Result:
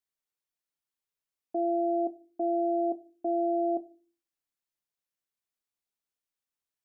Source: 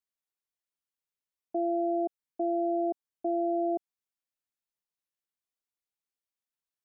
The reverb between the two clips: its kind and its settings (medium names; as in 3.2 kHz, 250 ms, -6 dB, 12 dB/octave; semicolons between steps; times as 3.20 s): simulated room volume 210 m³, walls furnished, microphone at 0.31 m